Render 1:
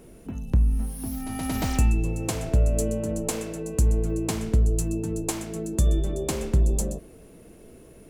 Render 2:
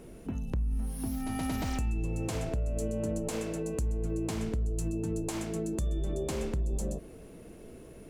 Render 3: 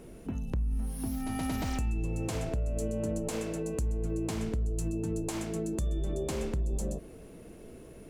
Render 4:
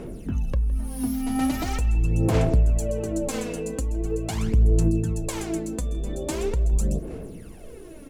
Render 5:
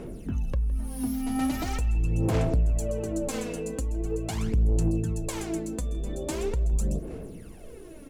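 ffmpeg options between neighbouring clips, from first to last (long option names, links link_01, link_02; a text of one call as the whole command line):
ffmpeg -i in.wav -af "highshelf=frequency=8600:gain=-6.5,alimiter=limit=-20dB:level=0:latency=1:release=73,acompressor=threshold=-31dB:ratio=2" out.wav
ffmpeg -i in.wav -af anull out.wav
ffmpeg -i in.wav -filter_complex "[0:a]aphaser=in_gain=1:out_gain=1:delay=4.2:decay=0.66:speed=0.42:type=sinusoidal,asplit=2[link_01][link_02];[link_02]adelay=162,lowpass=frequency=4200:poles=1,volume=-19dB,asplit=2[link_03][link_04];[link_04]adelay=162,lowpass=frequency=4200:poles=1,volume=0.39,asplit=2[link_05][link_06];[link_06]adelay=162,lowpass=frequency=4200:poles=1,volume=0.39[link_07];[link_01][link_03][link_05][link_07]amix=inputs=4:normalize=0,volume=4dB" out.wav
ffmpeg -i in.wav -af "asoftclip=type=tanh:threshold=-13.5dB,volume=-2.5dB" out.wav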